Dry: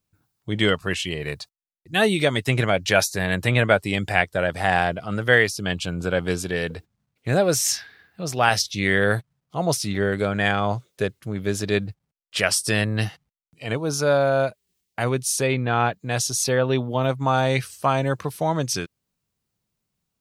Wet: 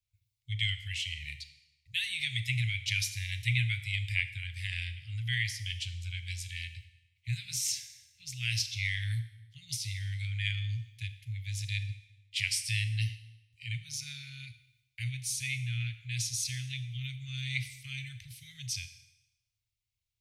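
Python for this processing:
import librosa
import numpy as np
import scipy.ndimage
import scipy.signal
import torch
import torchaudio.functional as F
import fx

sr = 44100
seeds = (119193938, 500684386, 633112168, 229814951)

y = scipy.signal.sosfilt(scipy.signal.cheby1(5, 1.0, [120.0, 2100.0], 'bandstop', fs=sr, output='sos'), x)
y = fx.high_shelf(y, sr, hz=6500.0, db=-8.5)
y = fx.rev_schroeder(y, sr, rt60_s=0.9, comb_ms=27, drr_db=10.5)
y = y * 10.0 ** (-4.5 / 20.0)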